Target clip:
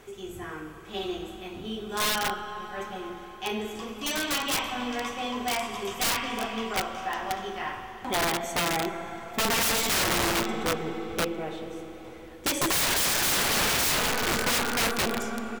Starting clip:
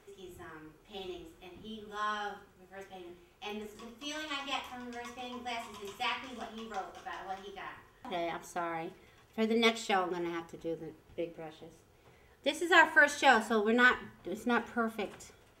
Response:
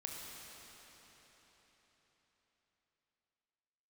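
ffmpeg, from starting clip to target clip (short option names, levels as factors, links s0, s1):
-filter_complex "[0:a]aeval=exprs='0.299*(cos(1*acos(clip(val(0)/0.299,-1,1)))-cos(1*PI/2))+0.106*(cos(2*acos(clip(val(0)/0.299,-1,1)))-cos(2*PI/2))+0.0944*(cos(5*acos(clip(val(0)/0.299,-1,1)))-cos(5*PI/2))+0.00376*(cos(7*acos(clip(val(0)/0.299,-1,1)))-cos(7*PI/2))+0.0422*(cos(8*acos(clip(val(0)/0.299,-1,1)))-cos(8*PI/2))':c=same,aecho=1:1:65|130|195|260:0.0794|0.0445|0.0249|0.0139,asplit=2[s0][s1];[1:a]atrim=start_sample=2205[s2];[s1][s2]afir=irnorm=-1:irlink=0,volume=1.12[s3];[s0][s3]amix=inputs=2:normalize=0,aeval=exprs='(mod(7.94*val(0)+1,2)-1)/7.94':c=same,volume=0.794"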